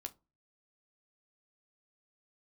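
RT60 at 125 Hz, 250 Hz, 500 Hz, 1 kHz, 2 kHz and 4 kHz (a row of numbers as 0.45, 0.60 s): 0.50, 0.40, 0.30, 0.25, 0.20, 0.15 s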